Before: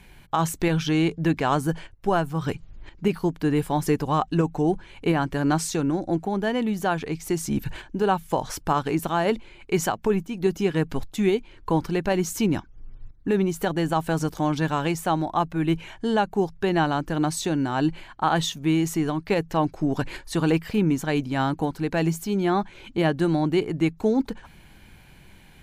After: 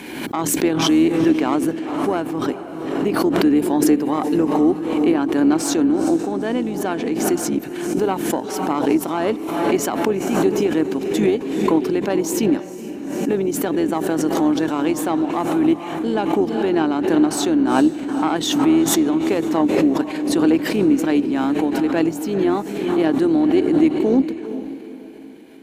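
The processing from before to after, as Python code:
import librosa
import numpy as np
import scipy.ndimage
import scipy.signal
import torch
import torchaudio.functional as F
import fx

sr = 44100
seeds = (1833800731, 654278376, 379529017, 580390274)

p1 = fx.octave_divider(x, sr, octaves=2, level_db=3.0)
p2 = fx.tube_stage(p1, sr, drive_db=10.0, bias=0.55)
p3 = fx.highpass_res(p2, sr, hz=290.0, q=3.5)
p4 = p3 + fx.echo_diffused(p3, sr, ms=459, feedback_pct=40, wet_db=-11, dry=0)
y = fx.pre_swell(p4, sr, db_per_s=41.0)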